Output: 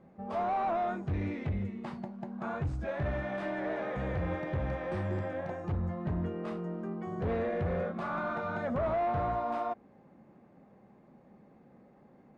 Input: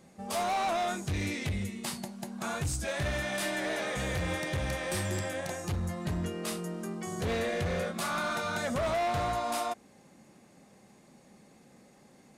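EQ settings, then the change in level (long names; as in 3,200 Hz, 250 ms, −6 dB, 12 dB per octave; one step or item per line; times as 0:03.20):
low-pass filter 1,300 Hz 12 dB per octave
0.0 dB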